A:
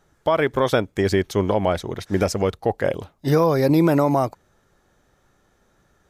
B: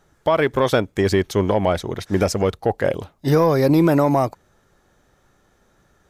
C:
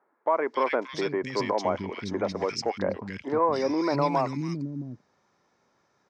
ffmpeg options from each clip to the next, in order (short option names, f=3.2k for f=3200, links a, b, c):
-af "acontrast=46,volume=-3.5dB"
-filter_complex "[0:a]highpass=170,equalizer=f=240:t=q:w=4:g=4,equalizer=f=1k:t=q:w=4:g=8,equalizer=f=2.2k:t=q:w=4:g=7,equalizer=f=3.3k:t=q:w=4:g=-4,equalizer=f=5.2k:t=q:w=4:g=8,lowpass=f=6.2k:w=0.5412,lowpass=f=6.2k:w=1.3066,acrossover=split=260|1800[a][b][c];[c]adelay=280[d];[a]adelay=670[e];[e][b][d]amix=inputs=3:normalize=0,volume=-8dB"